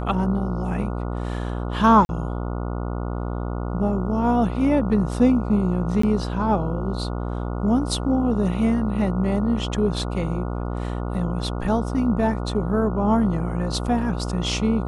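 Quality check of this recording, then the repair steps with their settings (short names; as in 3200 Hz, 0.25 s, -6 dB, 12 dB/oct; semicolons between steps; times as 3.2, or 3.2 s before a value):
buzz 60 Hz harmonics 24 -27 dBFS
2.05–2.09 gap 41 ms
6.02–6.03 gap 14 ms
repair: de-hum 60 Hz, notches 24; interpolate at 2.05, 41 ms; interpolate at 6.02, 14 ms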